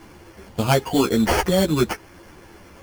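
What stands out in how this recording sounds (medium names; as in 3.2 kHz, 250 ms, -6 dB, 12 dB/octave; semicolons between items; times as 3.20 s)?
aliases and images of a low sample rate 3.8 kHz, jitter 0%; a shimmering, thickened sound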